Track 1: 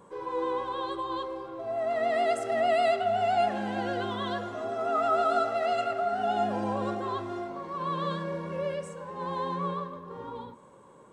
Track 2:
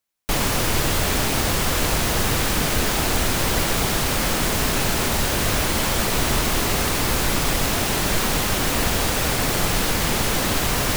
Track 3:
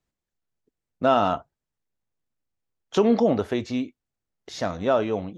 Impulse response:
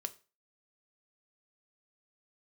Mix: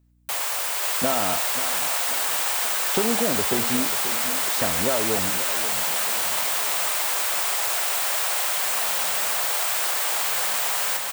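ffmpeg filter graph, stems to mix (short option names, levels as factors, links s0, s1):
-filter_complex "[0:a]equalizer=f=570:w=0.54:g=-14.5,adelay=2400,volume=0.211[s0];[1:a]highpass=f=610:w=0.5412,highpass=f=610:w=1.3066,aexciter=amount=1.9:drive=3.1:freq=7500,volume=0.531,asplit=2[s1][s2];[s2]volume=0.708[s3];[2:a]acompressor=threshold=0.0708:ratio=6,aeval=exprs='val(0)+0.000891*(sin(2*PI*60*n/s)+sin(2*PI*2*60*n/s)/2+sin(2*PI*3*60*n/s)/3+sin(2*PI*4*60*n/s)/4+sin(2*PI*5*60*n/s)/5)':c=same,volume=1.19,asplit=2[s4][s5];[s5]volume=0.237[s6];[s3][s6]amix=inputs=2:normalize=0,aecho=0:1:537|1074|1611|2148|2685|3222|3759:1|0.48|0.23|0.111|0.0531|0.0255|0.0122[s7];[s0][s1][s4][s7]amix=inputs=4:normalize=0"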